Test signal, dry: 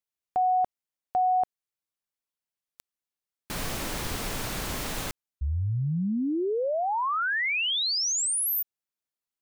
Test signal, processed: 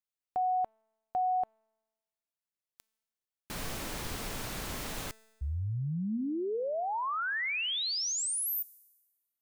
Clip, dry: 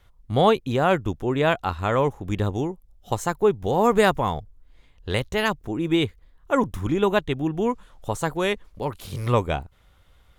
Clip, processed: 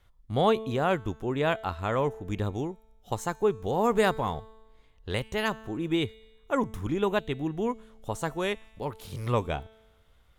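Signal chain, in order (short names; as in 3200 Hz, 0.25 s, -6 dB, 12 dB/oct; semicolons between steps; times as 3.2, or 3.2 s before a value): resonator 220 Hz, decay 1.2 s, mix 50%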